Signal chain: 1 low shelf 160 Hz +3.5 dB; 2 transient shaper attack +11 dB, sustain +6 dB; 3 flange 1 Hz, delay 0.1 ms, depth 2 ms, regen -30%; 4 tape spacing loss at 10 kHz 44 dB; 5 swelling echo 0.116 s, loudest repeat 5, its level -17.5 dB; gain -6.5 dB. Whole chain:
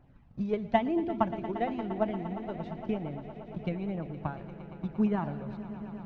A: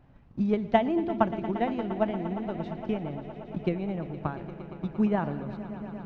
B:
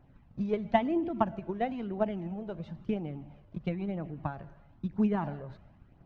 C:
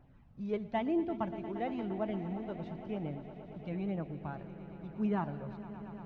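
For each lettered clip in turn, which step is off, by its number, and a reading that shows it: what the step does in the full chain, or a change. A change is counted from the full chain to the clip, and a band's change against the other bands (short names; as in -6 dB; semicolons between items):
3, loudness change +3.0 LU; 5, echo-to-direct -8.0 dB to none; 2, 1 kHz band -1.5 dB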